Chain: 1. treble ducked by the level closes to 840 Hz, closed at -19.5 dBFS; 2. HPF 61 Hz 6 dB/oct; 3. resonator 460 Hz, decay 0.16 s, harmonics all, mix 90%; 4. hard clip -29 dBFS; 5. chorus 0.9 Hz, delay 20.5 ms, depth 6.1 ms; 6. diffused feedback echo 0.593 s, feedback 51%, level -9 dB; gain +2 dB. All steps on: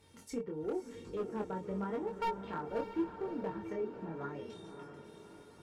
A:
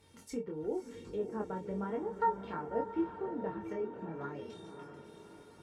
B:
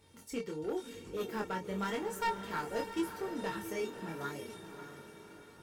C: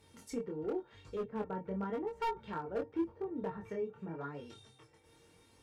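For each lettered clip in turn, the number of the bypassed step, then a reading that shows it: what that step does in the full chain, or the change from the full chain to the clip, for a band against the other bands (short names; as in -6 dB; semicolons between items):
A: 4, distortion -11 dB; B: 1, 4 kHz band +9.5 dB; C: 6, echo-to-direct -7.5 dB to none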